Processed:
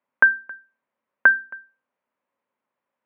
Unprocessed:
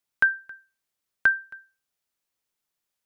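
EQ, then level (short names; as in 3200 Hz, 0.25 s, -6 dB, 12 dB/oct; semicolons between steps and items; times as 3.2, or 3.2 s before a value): speaker cabinet 150–2300 Hz, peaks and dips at 240 Hz +10 dB, 550 Hz +10 dB, 1000 Hz +9 dB; notches 60/120/180/240/300/360 Hz; +5.0 dB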